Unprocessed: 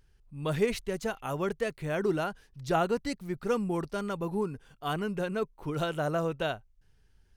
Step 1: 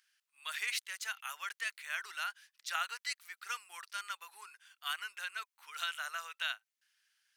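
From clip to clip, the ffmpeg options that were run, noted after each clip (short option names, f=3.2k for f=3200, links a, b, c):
-af "highpass=f=1.5k:w=0.5412,highpass=f=1.5k:w=1.3066,volume=3dB"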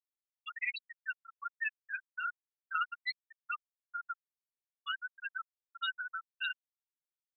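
-af "afftfilt=real='re*gte(hypot(re,im),0.0708)':imag='im*gte(hypot(re,im),0.0708)':win_size=1024:overlap=0.75,highshelf=f=5.2k:g=10,volume=3.5dB"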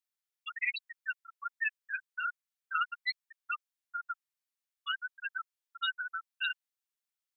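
-af "highpass=1.1k,volume=3.5dB"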